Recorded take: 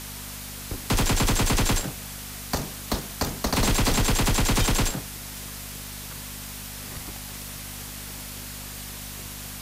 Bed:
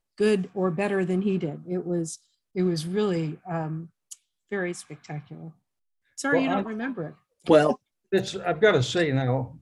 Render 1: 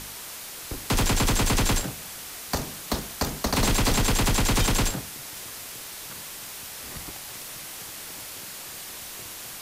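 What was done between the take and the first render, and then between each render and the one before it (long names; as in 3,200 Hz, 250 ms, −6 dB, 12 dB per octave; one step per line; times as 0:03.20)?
hum removal 50 Hz, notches 5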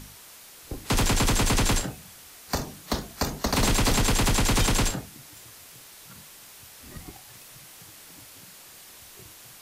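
noise reduction from a noise print 9 dB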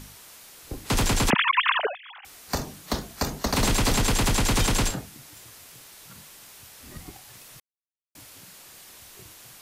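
0:01.30–0:02.25: three sine waves on the formant tracks
0:07.60–0:08.15: silence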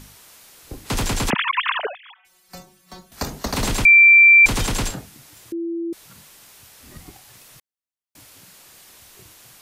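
0:02.14–0:03.12: stiff-string resonator 180 Hz, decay 0.24 s, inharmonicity 0.002
0:03.85–0:04.46: beep over 2,350 Hz −6.5 dBFS
0:05.52–0:05.93: beep over 336 Hz −23 dBFS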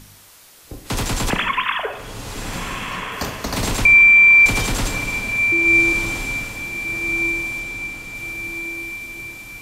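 feedback delay with all-pass diffusion 1,390 ms, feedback 51%, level −6 dB
dense smooth reverb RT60 1.1 s, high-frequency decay 0.65×, DRR 6.5 dB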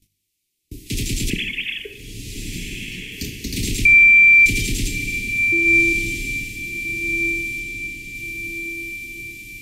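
noise gate −40 dBFS, range −27 dB
elliptic band-stop filter 370–2,300 Hz, stop band 40 dB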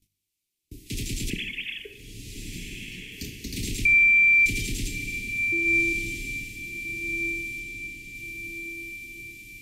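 level −7.5 dB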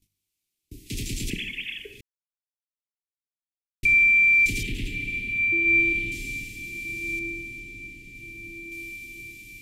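0:02.01–0:03.83: silence
0:04.63–0:06.12: high shelf with overshoot 4,100 Hz −11 dB, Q 1.5
0:07.19–0:08.72: high-shelf EQ 2,400 Hz −8.5 dB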